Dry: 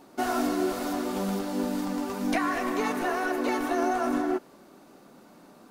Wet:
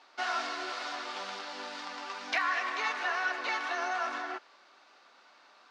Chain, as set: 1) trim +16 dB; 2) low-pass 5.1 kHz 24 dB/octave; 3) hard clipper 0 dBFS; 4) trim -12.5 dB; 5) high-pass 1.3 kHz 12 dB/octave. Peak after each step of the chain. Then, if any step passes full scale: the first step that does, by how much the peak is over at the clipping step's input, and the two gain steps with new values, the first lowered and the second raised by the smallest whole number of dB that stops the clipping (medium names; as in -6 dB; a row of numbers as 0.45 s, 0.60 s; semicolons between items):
+3.0 dBFS, +3.0 dBFS, 0.0 dBFS, -12.5 dBFS, -17.5 dBFS; step 1, 3.0 dB; step 1 +13 dB, step 4 -9.5 dB